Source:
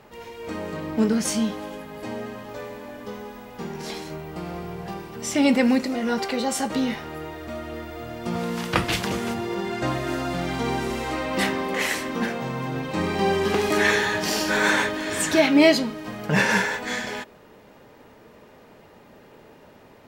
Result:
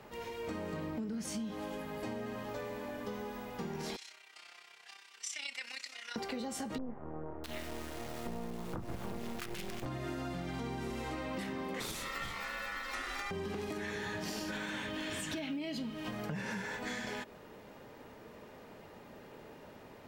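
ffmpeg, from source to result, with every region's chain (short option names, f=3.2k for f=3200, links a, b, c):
-filter_complex "[0:a]asettb=1/sr,asplit=3[a][b][c];[a]atrim=end=3.964[d];[b]atrim=start=3.96:end=6.16,asetpts=PTS-STARTPTS,afade=t=in:d=0.004:c=qsin,afade=t=out:st=2.196:d=0.004:c=qsin,tremolo=f=32:d=0.667,asuperpass=centerf=4600:order=4:qfactor=0.65[e];[c]atrim=start=6.156[f];[d][e]acrossfade=d=0.004:c1=hsin:c2=qsin[g];[g][f]acrossfade=d=0.004:c1=qsin:c2=hsin,asettb=1/sr,asplit=3[h][i][j];[h]atrim=end=6.784[k];[i]atrim=start=6.78:end=9.86,asetpts=PTS-STARTPTS,afade=t=in:d=0.004:c=qsin,afade=t=out:st=3.076:d=0.004:c=qsin,lowpass=f=3.5k:p=1,acrusher=bits=4:dc=4:mix=0:aa=0.000001,acrossover=split=1200[l][m];[m]adelay=660[n];[l][n]amix=inputs=2:normalize=0,atrim=end_sample=135828[o];[j]atrim=start=9.856[p];[k][o]acrossfade=d=0.004:c1=hsin:c2=qsin[q];[q][p]acrossfade=d=0.004:c1=qsin:c2=hsin,asettb=1/sr,asplit=3[r][s][t];[r]atrim=end=11.804[u];[s]atrim=start=11.8:end=13.31,asetpts=PTS-STARTPTS,afade=t=in:d=0.004:c=qsin,afade=t=out:st=1.506:d=0.004:c=qsin,highshelf=f=3.5k:g=10,aeval=exprs='val(0)*sin(2*PI*1600*n/s)':c=same[v];[t]atrim=start=13.306[w];[u][v]acrossfade=d=0.004:c1=hsin:c2=qsin[x];[x][w]acrossfade=d=0.004:c1=qsin:c2=hsin,asettb=1/sr,asplit=3[y][z][aa];[y]atrim=end=14.524[ab];[z]atrim=start=14.52:end=16.11,asetpts=PTS-STARTPTS,afade=t=in:d=0.004:c=qsin,afade=t=out:st=1.586:d=0.004:c=qsin,equalizer=f=3k:w=2.6:g=8.5,bandreject=f=400:w=10,acrusher=bits=9:mode=log:mix=0:aa=0.000001[ac];[aa]atrim=start=16.106[ad];[ab][ac]acrossfade=d=0.004:c1=hsin:c2=qsin[ae];[ae][ad]acrossfade=d=0.004:c1=qsin:c2=hsin,acrossover=split=280[af][ag];[ag]acompressor=threshold=-35dB:ratio=2[ah];[af][ah]amix=inputs=2:normalize=0,alimiter=limit=-20.5dB:level=0:latency=1:release=89,acompressor=threshold=-33dB:ratio=6,volume=-3dB"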